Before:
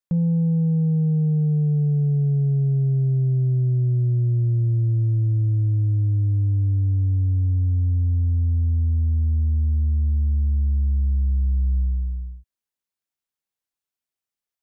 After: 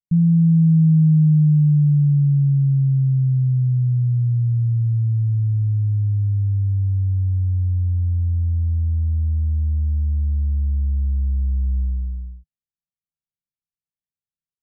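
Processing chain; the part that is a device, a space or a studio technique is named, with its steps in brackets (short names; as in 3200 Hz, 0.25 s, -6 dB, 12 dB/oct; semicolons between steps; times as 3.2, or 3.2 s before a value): the neighbour's flat through the wall (LPF 200 Hz 24 dB/oct; bell 160 Hz +7 dB 0.43 oct)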